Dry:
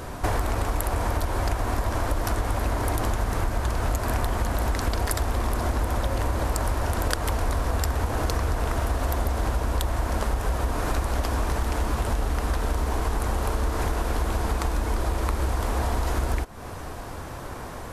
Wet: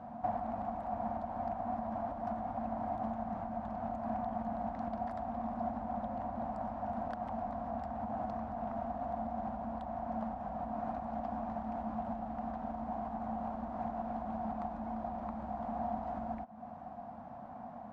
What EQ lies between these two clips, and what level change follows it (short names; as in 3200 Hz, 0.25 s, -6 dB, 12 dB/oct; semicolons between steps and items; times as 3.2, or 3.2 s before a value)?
double band-pass 400 Hz, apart 1.7 oct; air absorption 76 m; 0.0 dB